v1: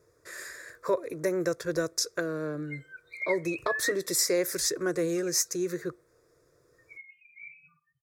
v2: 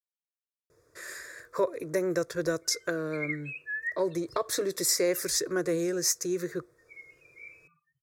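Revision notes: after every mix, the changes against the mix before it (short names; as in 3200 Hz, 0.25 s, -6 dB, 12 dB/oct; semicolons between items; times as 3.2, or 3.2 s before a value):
speech: entry +0.70 s; reverb: off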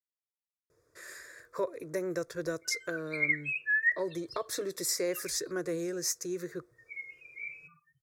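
speech -5.5 dB; background +6.5 dB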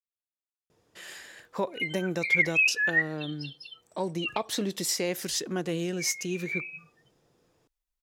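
background: entry -0.90 s; master: remove fixed phaser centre 810 Hz, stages 6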